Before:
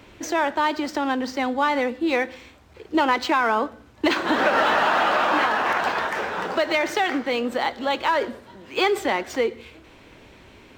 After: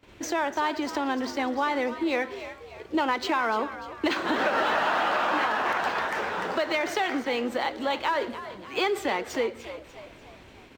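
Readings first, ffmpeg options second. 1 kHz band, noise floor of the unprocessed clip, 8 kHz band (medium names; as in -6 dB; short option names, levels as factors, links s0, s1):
-4.5 dB, -50 dBFS, -3.0 dB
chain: -filter_complex "[0:a]acompressor=threshold=0.0447:ratio=1.5,asplit=6[s0][s1][s2][s3][s4][s5];[s1]adelay=295,afreqshift=70,volume=0.224[s6];[s2]adelay=590,afreqshift=140,volume=0.104[s7];[s3]adelay=885,afreqshift=210,volume=0.0473[s8];[s4]adelay=1180,afreqshift=280,volume=0.0219[s9];[s5]adelay=1475,afreqshift=350,volume=0.01[s10];[s0][s6][s7][s8][s9][s10]amix=inputs=6:normalize=0,agate=range=0.141:threshold=0.00398:ratio=16:detection=peak,volume=0.841"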